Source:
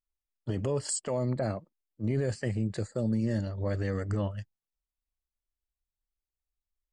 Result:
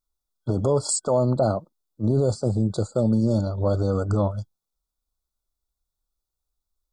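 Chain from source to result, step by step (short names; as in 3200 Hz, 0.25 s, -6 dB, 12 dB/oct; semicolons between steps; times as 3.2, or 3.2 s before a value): dynamic EQ 770 Hz, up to +5 dB, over -46 dBFS, Q 1.3; FFT band-reject 1500–3300 Hz; gain +7.5 dB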